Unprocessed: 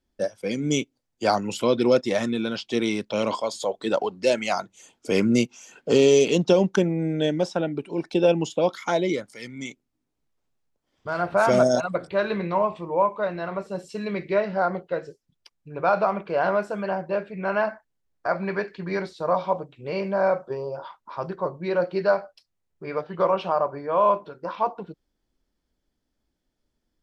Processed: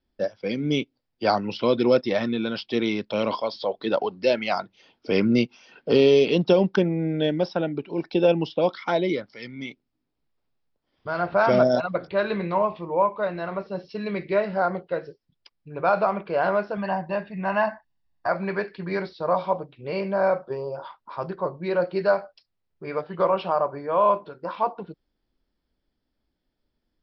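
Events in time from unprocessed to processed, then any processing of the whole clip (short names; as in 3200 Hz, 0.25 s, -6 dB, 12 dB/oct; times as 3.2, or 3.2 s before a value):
16.77–18.29 comb 1.1 ms
whole clip: steep low-pass 5400 Hz 96 dB/oct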